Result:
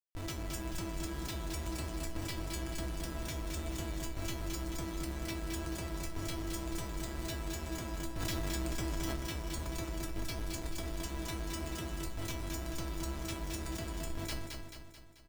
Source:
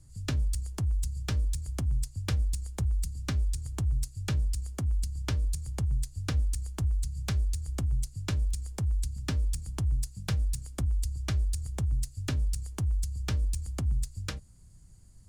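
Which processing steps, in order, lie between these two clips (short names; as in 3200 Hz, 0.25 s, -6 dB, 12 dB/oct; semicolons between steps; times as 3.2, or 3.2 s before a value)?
band shelf 4100 Hz +9 dB 2.3 oct; Schmitt trigger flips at -38 dBFS; resonator 330 Hz, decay 0.23 s, harmonics all, mix 90%; feedback echo 0.218 s, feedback 52%, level -5 dB; 8.2–9.16 fast leveller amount 100%; gain +4 dB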